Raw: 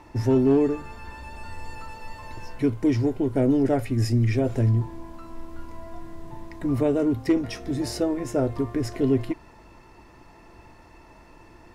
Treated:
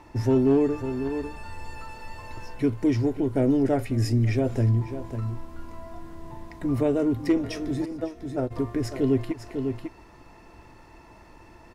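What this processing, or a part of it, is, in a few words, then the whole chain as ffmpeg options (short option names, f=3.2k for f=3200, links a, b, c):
ducked delay: -filter_complex "[0:a]asplit=3[a][b][c];[a]afade=t=out:st=7.84:d=0.02[d];[b]agate=range=-28dB:threshold=-21dB:ratio=16:detection=peak,afade=t=in:st=7.84:d=0.02,afade=t=out:st=8.5:d=0.02[e];[c]afade=t=in:st=8.5:d=0.02[f];[d][e][f]amix=inputs=3:normalize=0,asplit=3[g][h][i];[h]adelay=548,volume=-6dB[j];[i]apad=whole_len=542167[k];[j][k]sidechaincompress=threshold=-37dB:ratio=8:attack=5.9:release=113[l];[g][l]amix=inputs=2:normalize=0,volume=-1dB"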